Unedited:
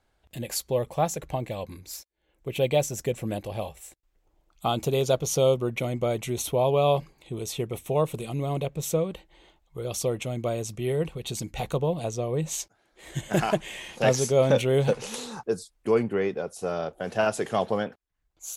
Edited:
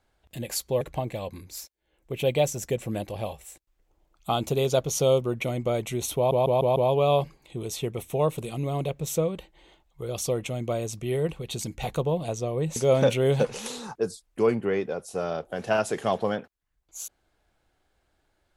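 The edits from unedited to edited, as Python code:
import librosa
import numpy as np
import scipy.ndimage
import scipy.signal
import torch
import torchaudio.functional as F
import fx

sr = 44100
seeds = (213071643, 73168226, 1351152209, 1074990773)

y = fx.edit(x, sr, fx.cut(start_s=0.81, length_s=0.36),
    fx.stutter(start_s=6.52, slice_s=0.15, count=5),
    fx.cut(start_s=12.52, length_s=1.72), tone=tone)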